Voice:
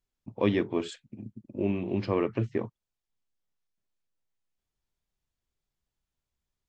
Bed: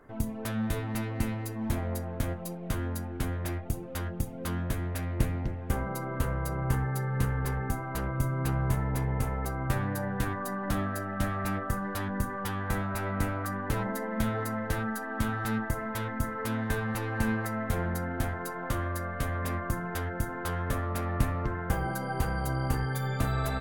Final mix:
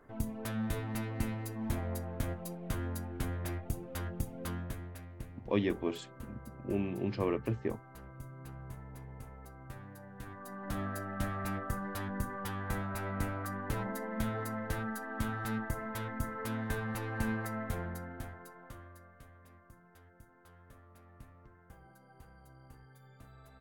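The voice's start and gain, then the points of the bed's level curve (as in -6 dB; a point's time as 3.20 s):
5.10 s, -5.0 dB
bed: 4.42 s -4.5 dB
5.24 s -18.5 dB
10.10 s -18.5 dB
10.87 s -5.5 dB
17.58 s -5.5 dB
19.44 s -27 dB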